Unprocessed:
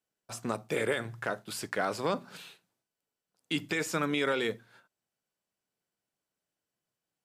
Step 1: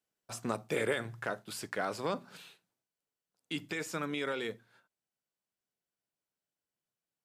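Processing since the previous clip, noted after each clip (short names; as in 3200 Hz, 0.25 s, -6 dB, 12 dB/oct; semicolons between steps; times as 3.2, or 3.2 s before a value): vocal rider within 4 dB 2 s; gain -4 dB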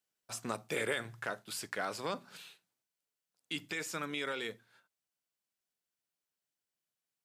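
tilt shelf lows -3.5 dB, about 1200 Hz; gain -1.5 dB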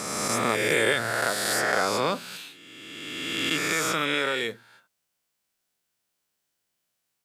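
spectral swells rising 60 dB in 2.24 s; gain +8 dB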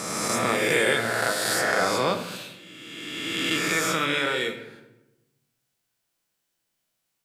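shoebox room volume 360 m³, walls mixed, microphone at 0.69 m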